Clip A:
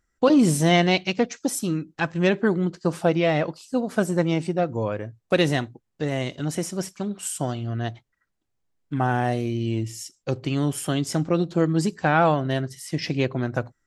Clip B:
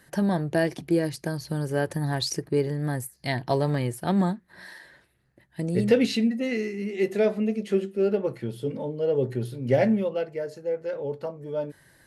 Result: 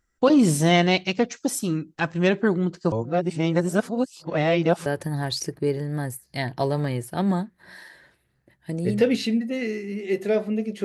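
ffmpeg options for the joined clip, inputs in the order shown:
ffmpeg -i cue0.wav -i cue1.wav -filter_complex "[0:a]apad=whole_dur=10.84,atrim=end=10.84,asplit=2[link_01][link_02];[link_01]atrim=end=2.922[link_03];[link_02]atrim=start=2.918:end=4.862,asetpts=PTS-STARTPTS,areverse[link_04];[1:a]atrim=start=1.758:end=7.74[link_05];[link_03][link_04]acrossfade=duration=0.004:curve1=hsin:curve2=hsin[link_06];[link_06][link_05]acrossfade=duration=0.004:curve1=hsin:curve2=hsin" out.wav

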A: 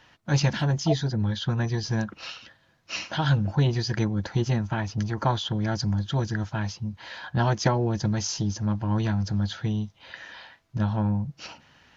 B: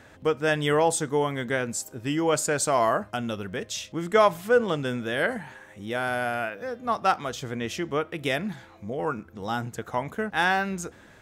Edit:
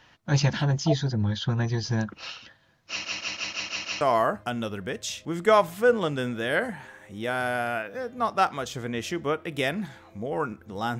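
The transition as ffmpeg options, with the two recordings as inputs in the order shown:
ffmpeg -i cue0.wav -i cue1.wav -filter_complex "[0:a]apad=whole_dur=10.99,atrim=end=10.99,asplit=7[link_01][link_02][link_03][link_04][link_05][link_06][link_07];[link_01]atrim=end=3.052[link_08];[link_02]atrim=start=2.888:end=3.052[link_09];[link_03]atrim=start=2.888:end=3.052[link_10];[link_04]atrim=start=2.888:end=3.052[link_11];[link_05]atrim=start=2.888:end=3.052[link_12];[link_06]atrim=start=2.888:end=3.052[link_13];[link_07]atrim=start=2.888:end=3.052[link_14];[1:a]atrim=start=2.678:end=9.66[link_15];[link_08][link_09]acrossfade=duration=0.004:curve1=hsin:curve2=hsin[link_16];[link_16][link_10]acrossfade=duration=0.004:curve1=hsin:curve2=hsin[link_17];[link_17][link_11]acrossfade=duration=0.004:curve1=hsin:curve2=hsin[link_18];[link_18][link_12]acrossfade=duration=0.004:curve1=hsin:curve2=hsin[link_19];[link_19][link_13]acrossfade=duration=0.004:curve1=hsin:curve2=hsin[link_20];[link_20][link_14]acrossfade=duration=0.004:curve1=hsin:curve2=hsin[link_21];[link_21][link_15]acrossfade=duration=0.004:curve1=hsin:curve2=hsin" out.wav

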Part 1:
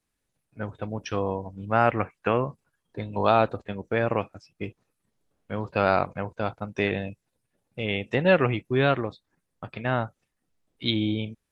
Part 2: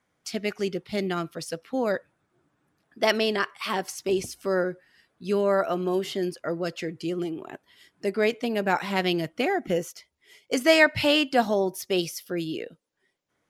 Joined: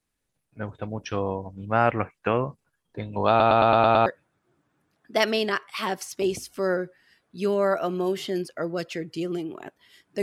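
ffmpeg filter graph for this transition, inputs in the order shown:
ffmpeg -i cue0.wav -i cue1.wav -filter_complex "[0:a]apad=whole_dur=10.22,atrim=end=10.22,asplit=7[link_01][link_02][link_03][link_04][link_05][link_06][link_07];[link_01]atrim=end=3.402[link_08];[link_02]atrim=start=3.288:end=3.402[link_09];[link_03]atrim=start=3.288:end=3.402[link_10];[link_04]atrim=start=3.288:end=3.402[link_11];[link_05]atrim=start=3.288:end=3.402[link_12];[link_06]atrim=start=3.288:end=3.402[link_13];[link_07]atrim=start=3.288:end=3.402[link_14];[1:a]atrim=start=1.928:end=8.09[link_15];[link_08][link_09]acrossfade=duration=0.004:curve1=hsin:curve2=hsin[link_16];[link_16][link_10]acrossfade=duration=0.004:curve1=hsin:curve2=hsin[link_17];[link_17][link_11]acrossfade=duration=0.004:curve1=hsin:curve2=hsin[link_18];[link_18][link_12]acrossfade=duration=0.004:curve1=hsin:curve2=hsin[link_19];[link_19][link_13]acrossfade=duration=0.004:curve1=hsin:curve2=hsin[link_20];[link_20][link_14]acrossfade=duration=0.004:curve1=hsin:curve2=hsin[link_21];[link_21][link_15]acrossfade=duration=0.004:curve1=hsin:curve2=hsin" out.wav

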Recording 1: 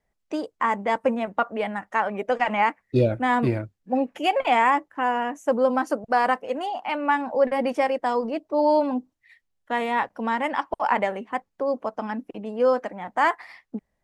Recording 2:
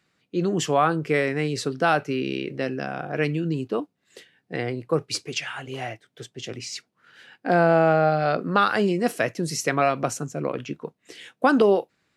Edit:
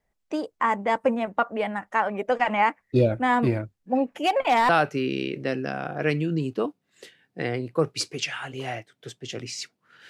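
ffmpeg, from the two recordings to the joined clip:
ffmpeg -i cue0.wav -i cue1.wav -filter_complex "[0:a]asettb=1/sr,asplit=3[link_01][link_02][link_03];[link_01]atrim=end=4.184[link_04];[link_02]atrim=start=4.18:end=4.69,asetpts=PTS-STARTPTS,afade=type=in:duration=0.004:curve=qsin,afade=type=out:start_time=0.506:duration=0.004:curve=qsin,asoftclip=type=hard:threshold=-15dB[link_05];[link_03]atrim=start=4.686[link_06];[link_04][link_05]acrossfade=duration=0.004:curve1=hsin:curve2=qsin[link_07];[link_07][link_06]acrossfade=duration=0.004:curve1=qsin:curve2=hsin,apad=whole_dur=10.09,atrim=end=10.09,atrim=end=4.692[link_08];[1:a]atrim=start=1.828:end=7.23[link_09];[link_08][link_09]acrossfade=duration=0.004:curve1=hsin:curve2=hsin" out.wav

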